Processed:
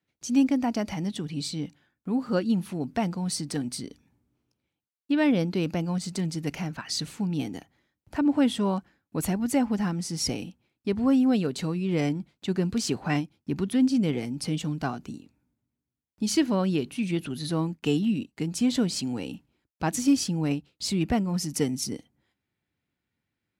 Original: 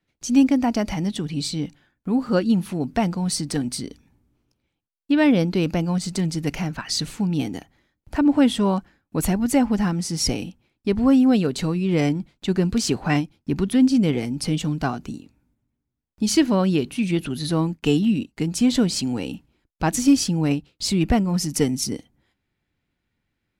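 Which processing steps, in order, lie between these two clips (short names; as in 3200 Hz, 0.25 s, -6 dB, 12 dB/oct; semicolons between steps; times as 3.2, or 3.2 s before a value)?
HPF 77 Hz; gain -5.5 dB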